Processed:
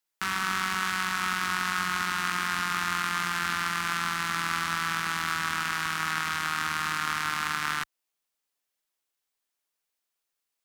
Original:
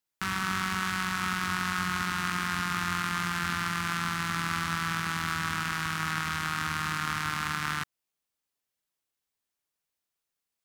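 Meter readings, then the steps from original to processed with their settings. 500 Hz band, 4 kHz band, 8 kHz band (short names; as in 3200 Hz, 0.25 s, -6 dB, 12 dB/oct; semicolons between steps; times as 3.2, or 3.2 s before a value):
+0.5 dB, +2.5 dB, +2.5 dB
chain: bell 100 Hz -12.5 dB 2.2 oct; gain +2.5 dB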